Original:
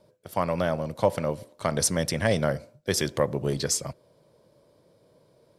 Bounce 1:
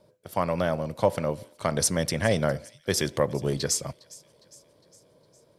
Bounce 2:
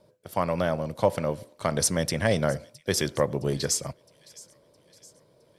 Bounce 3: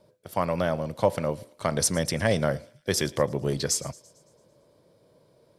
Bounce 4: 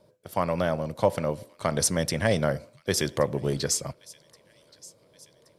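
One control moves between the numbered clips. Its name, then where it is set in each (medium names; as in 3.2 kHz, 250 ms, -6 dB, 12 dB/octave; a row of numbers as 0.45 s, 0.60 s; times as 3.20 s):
feedback echo behind a high-pass, time: 408 ms, 664 ms, 112 ms, 1125 ms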